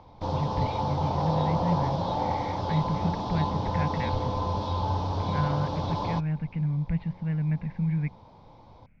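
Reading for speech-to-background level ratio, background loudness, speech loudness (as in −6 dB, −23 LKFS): −1.5 dB, −29.5 LKFS, −31.0 LKFS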